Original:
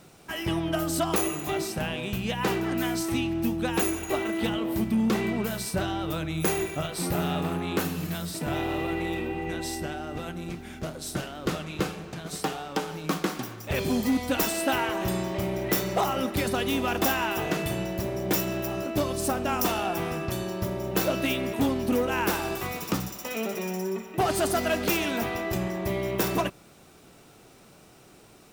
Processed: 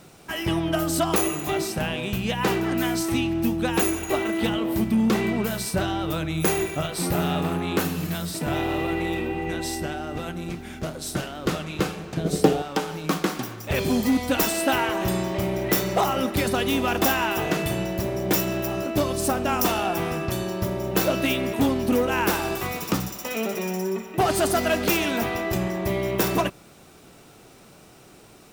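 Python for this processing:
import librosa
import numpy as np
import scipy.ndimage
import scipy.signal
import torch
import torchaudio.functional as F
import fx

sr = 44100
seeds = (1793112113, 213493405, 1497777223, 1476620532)

y = fx.low_shelf_res(x, sr, hz=700.0, db=9.5, q=1.5, at=(12.17, 12.62))
y = y * librosa.db_to_amplitude(3.5)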